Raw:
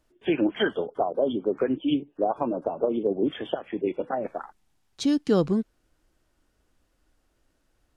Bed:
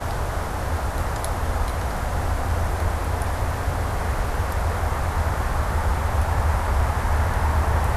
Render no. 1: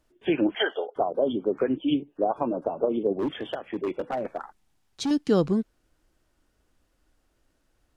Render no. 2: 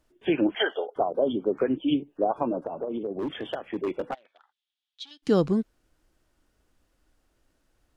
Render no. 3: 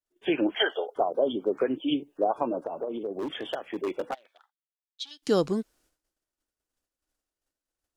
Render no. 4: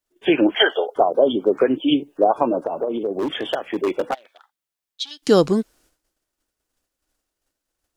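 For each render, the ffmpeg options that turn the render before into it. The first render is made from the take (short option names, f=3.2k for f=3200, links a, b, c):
-filter_complex "[0:a]asettb=1/sr,asplit=3[a][b][c];[a]atrim=end=0.554[d];[b]atrim=start=0.55:end=0.96,asetpts=PTS-STARTPTS,afade=t=in:d=0.004:c=qsin,afade=t=out:st=0.406:d=0.004:c=qsin,highpass=f=410:w=0.5412,highpass=f=410:w=1.3066,equalizer=f=760:t=q:w=4:g=6,equalizer=f=1.1k:t=q:w=4:g=-4,equalizer=f=2k:t=q:w=4:g=4,equalizer=f=2.9k:t=q:w=4:g=5,equalizer=f=4.9k:t=q:w=4:g=-7,lowpass=f=6k:w=0.5412,lowpass=f=6k:w=1.3066[e];[c]atrim=start=0.956[f];[d][e]acrossfade=d=0.004:c1=hsin:c2=qsin[g];[g][f]acrossfade=d=0.004:c1=qsin:c2=hsin,asettb=1/sr,asplit=3[h][i][j];[h]atrim=end=3.174[k];[i]atrim=start=3.17:end=5.11,asetpts=PTS-STARTPTS,afade=t=in:d=0.004:c=qsin,afade=t=out:st=1.936:d=0.004:c=qsin,volume=23dB,asoftclip=hard,volume=-23dB[l];[j]atrim=start=5.106[m];[k][l]acrossfade=d=0.004:c1=hsin:c2=qsin[n];[n][m]acrossfade=d=0.004:c1=qsin:c2=hsin"
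-filter_complex "[0:a]asettb=1/sr,asplit=3[a][b][c];[a]atrim=end=2.594[d];[b]atrim=start=2.59:end=3.43,asetpts=PTS-STARTPTS,afade=t=in:d=0.004:c=qsin,afade=t=out:st=0.836:d=0.004:c=qsin,acompressor=threshold=-27dB:ratio=6:attack=3.2:release=140:knee=1:detection=peak[e];[c]atrim=start=3.426[f];[d][e]acrossfade=d=0.004:c1=hsin:c2=qsin[g];[g][f]acrossfade=d=0.004:c1=qsin:c2=hsin,asplit=3[h][i][j];[h]afade=t=out:st=4.13:d=0.02[k];[i]bandpass=f=3.4k:t=q:w=4.9,afade=t=in:st=4.13:d=0.02,afade=t=out:st=5.22:d=0.02[l];[j]afade=t=in:st=5.22:d=0.02[m];[k][l][m]amix=inputs=3:normalize=0"
-af "agate=range=-33dB:threshold=-56dB:ratio=3:detection=peak,bass=f=250:g=-8,treble=f=4k:g=8"
-af "volume=9dB"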